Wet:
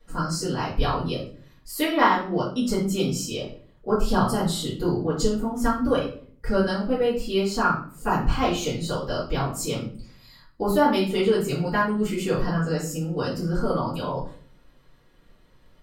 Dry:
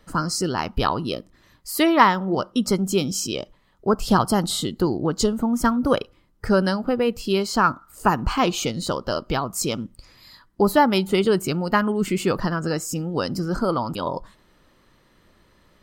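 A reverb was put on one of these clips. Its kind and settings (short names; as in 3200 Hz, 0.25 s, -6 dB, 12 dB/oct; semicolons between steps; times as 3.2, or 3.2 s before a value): shoebox room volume 45 m³, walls mixed, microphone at 2.3 m; gain -15 dB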